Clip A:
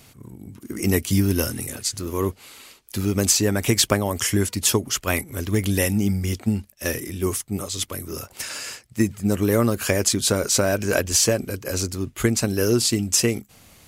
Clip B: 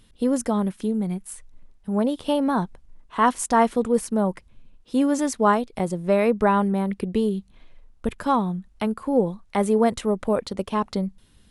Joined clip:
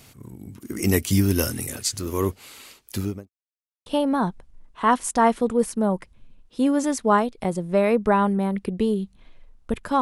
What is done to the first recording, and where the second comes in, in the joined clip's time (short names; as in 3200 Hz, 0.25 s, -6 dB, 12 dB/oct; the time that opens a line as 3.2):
clip A
2.89–3.3 studio fade out
3.3–3.86 mute
3.86 switch to clip B from 2.21 s